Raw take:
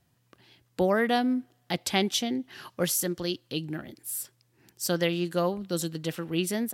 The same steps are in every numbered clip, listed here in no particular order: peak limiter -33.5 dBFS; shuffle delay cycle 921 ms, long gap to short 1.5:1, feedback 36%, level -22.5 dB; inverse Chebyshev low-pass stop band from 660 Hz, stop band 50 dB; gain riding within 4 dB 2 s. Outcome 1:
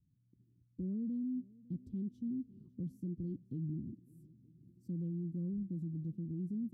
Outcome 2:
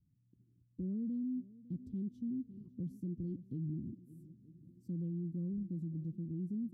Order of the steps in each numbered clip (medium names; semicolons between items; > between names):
gain riding > inverse Chebyshev low-pass > peak limiter > shuffle delay; inverse Chebyshev low-pass > gain riding > shuffle delay > peak limiter